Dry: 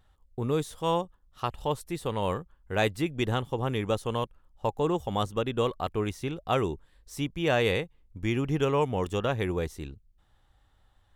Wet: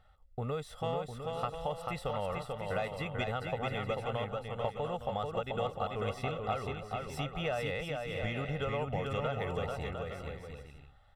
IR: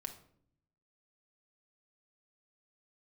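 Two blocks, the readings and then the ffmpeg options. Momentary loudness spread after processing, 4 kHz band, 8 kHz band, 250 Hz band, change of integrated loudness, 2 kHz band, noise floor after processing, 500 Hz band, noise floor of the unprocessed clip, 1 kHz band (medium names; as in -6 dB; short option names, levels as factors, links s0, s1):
5 LU, -6.5 dB, -9.5 dB, -10.5 dB, -6.5 dB, -5.0 dB, -57 dBFS, -6.0 dB, -65 dBFS, -4.5 dB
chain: -filter_complex "[0:a]asplit=2[s0][s1];[s1]highpass=f=720:p=1,volume=2.24,asoftclip=type=tanh:threshold=0.251[s2];[s0][s2]amix=inputs=2:normalize=0,lowpass=f=1800:p=1,volume=0.501,aecho=1:1:1.5:0.81,acompressor=threshold=0.0224:ratio=5,bandreject=f=6500:w=6.4,asplit=2[s3][s4];[s4]aecho=0:1:440|704|862.4|957.4|1014:0.631|0.398|0.251|0.158|0.1[s5];[s3][s5]amix=inputs=2:normalize=0"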